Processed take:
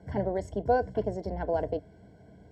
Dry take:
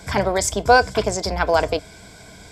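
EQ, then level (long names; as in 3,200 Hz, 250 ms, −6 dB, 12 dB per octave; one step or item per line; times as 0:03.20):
moving average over 36 samples
high-pass filter 70 Hz
−6.0 dB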